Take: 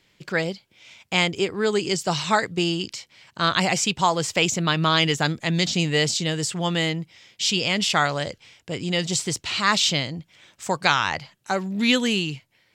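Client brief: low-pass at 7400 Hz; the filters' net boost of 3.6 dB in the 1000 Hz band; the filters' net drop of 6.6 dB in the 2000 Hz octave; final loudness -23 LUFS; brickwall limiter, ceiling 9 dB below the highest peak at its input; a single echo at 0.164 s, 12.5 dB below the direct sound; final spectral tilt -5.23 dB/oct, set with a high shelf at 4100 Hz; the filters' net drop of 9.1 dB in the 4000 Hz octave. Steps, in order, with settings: LPF 7400 Hz; bell 1000 Hz +7.5 dB; bell 2000 Hz -9 dB; bell 4000 Hz -6 dB; high shelf 4100 Hz -5 dB; limiter -13.5 dBFS; echo 0.164 s -12.5 dB; gain +3 dB

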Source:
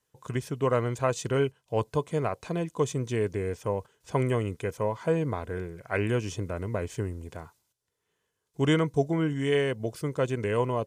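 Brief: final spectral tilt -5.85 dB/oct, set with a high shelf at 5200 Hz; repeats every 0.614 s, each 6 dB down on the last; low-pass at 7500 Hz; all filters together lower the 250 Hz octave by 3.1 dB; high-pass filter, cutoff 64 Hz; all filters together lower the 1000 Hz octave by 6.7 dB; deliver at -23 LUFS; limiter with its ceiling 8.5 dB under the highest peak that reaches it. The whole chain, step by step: HPF 64 Hz; LPF 7500 Hz; bell 250 Hz -4 dB; bell 1000 Hz -8.5 dB; high shelf 5200 Hz +5.5 dB; limiter -22 dBFS; feedback echo 0.614 s, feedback 50%, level -6 dB; gain +10 dB

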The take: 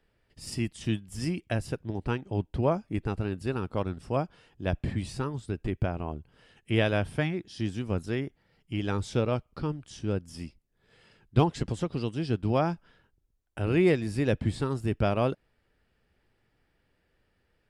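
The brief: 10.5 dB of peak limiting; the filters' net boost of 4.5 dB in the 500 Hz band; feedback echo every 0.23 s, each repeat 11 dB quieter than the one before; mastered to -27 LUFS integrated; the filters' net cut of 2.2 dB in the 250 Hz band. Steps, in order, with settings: bell 250 Hz -6.5 dB; bell 500 Hz +7.5 dB; limiter -19.5 dBFS; feedback echo 0.23 s, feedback 28%, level -11 dB; gain +5.5 dB

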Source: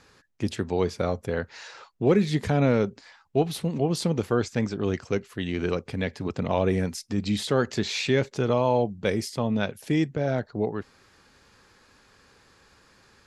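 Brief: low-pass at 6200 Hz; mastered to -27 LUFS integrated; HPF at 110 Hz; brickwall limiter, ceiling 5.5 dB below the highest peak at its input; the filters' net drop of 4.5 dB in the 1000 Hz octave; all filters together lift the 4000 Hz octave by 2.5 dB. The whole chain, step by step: HPF 110 Hz; LPF 6200 Hz; bell 1000 Hz -6.5 dB; bell 4000 Hz +4 dB; gain +2 dB; limiter -14 dBFS

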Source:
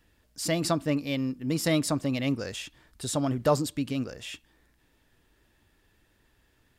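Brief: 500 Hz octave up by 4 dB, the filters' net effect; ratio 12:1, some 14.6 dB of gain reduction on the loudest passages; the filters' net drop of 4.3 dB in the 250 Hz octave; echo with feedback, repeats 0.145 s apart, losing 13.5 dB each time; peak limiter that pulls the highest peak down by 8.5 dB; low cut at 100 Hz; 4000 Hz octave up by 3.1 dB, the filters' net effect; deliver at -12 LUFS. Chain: HPF 100 Hz; bell 250 Hz -7.5 dB; bell 500 Hz +6.5 dB; bell 4000 Hz +4 dB; compressor 12:1, threshold -29 dBFS; limiter -27.5 dBFS; feedback echo 0.145 s, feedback 21%, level -13.5 dB; gain +25.5 dB

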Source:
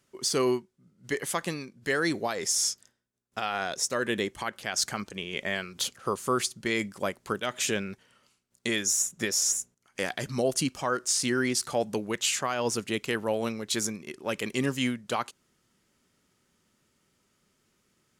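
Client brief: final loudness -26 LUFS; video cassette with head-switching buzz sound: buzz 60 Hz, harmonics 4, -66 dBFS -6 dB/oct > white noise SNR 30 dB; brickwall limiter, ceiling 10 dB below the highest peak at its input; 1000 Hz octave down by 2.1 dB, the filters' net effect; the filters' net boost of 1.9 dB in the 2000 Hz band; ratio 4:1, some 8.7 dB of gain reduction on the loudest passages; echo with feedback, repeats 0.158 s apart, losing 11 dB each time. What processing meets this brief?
bell 1000 Hz -4 dB; bell 2000 Hz +3.5 dB; compressor 4:1, threshold -33 dBFS; limiter -25.5 dBFS; feedback echo 0.158 s, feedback 28%, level -11 dB; buzz 60 Hz, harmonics 4, -66 dBFS -6 dB/oct; white noise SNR 30 dB; gain +11.5 dB

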